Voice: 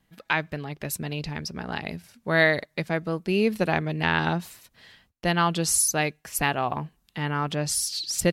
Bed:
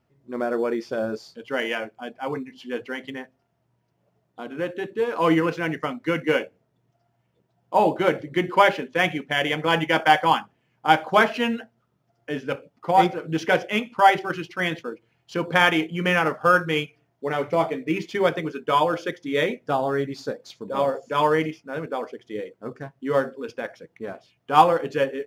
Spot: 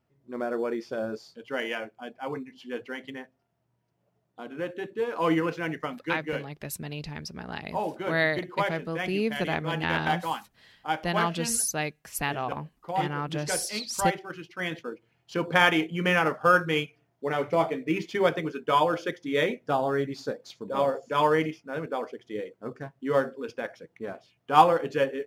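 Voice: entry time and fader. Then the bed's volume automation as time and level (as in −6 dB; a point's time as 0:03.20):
5.80 s, −5.0 dB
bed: 0:05.83 −5 dB
0:06.35 −11.5 dB
0:14.26 −11.5 dB
0:14.99 −2.5 dB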